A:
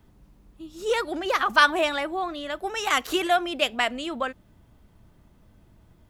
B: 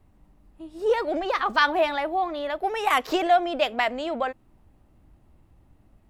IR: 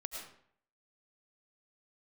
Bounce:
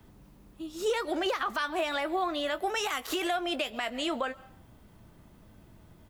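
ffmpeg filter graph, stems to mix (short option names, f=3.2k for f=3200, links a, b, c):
-filter_complex "[0:a]volume=3dB[a];[1:a]aemphasis=mode=production:type=riaa,volume=-1,adelay=19,volume=-13dB,asplit=2[b][c];[c]volume=-7dB[d];[2:a]atrim=start_sample=2205[e];[d][e]afir=irnorm=-1:irlink=0[f];[a][b][f]amix=inputs=3:normalize=0,acrossover=split=95|250[g][h][i];[g]acompressor=threshold=-58dB:ratio=4[j];[h]acompressor=threshold=-54dB:ratio=4[k];[i]acompressor=threshold=-25dB:ratio=4[l];[j][k][l]amix=inputs=3:normalize=0,alimiter=limit=-20dB:level=0:latency=1:release=86"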